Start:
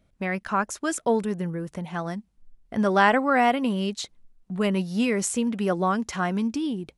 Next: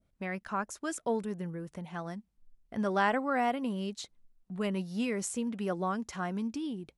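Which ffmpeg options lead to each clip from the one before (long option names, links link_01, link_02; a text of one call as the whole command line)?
ffmpeg -i in.wav -af "adynamicequalizer=threshold=0.0112:dfrequency=2600:dqfactor=0.86:tfrequency=2600:tqfactor=0.86:attack=5:release=100:ratio=0.375:range=2:mode=cutabove:tftype=bell,volume=-8.5dB" out.wav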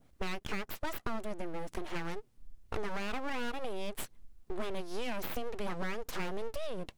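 ffmpeg -i in.wav -af "alimiter=level_in=0.5dB:limit=-24dB:level=0:latency=1:release=59,volume=-0.5dB,acompressor=threshold=-43dB:ratio=5,aeval=exprs='abs(val(0))':channel_layout=same,volume=11dB" out.wav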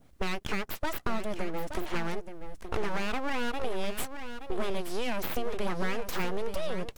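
ffmpeg -i in.wav -af "aecho=1:1:874:0.335,volume=5dB" out.wav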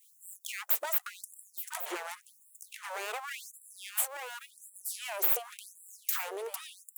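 ffmpeg -i in.wav -af "acompressor=threshold=-32dB:ratio=4,aexciter=amount=4:drive=3.9:freq=6800,afftfilt=real='re*gte(b*sr/1024,340*pow(7400/340,0.5+0.5*sin(2*PI*0.9*pts/sr)))':imag='im*gte(b*sr/1024,340*pow(7400/340,0.5+0.5*sin(2*PI*0.9*pts/sr)))':win_size=1024:overlap=0.75,volume=3.5dB" out.wav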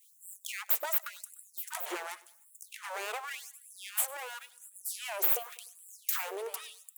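ffmpeg -i in.wav -af "aecho=1:1:100|200|300:0.0891|0.0392|0.0173" out.wav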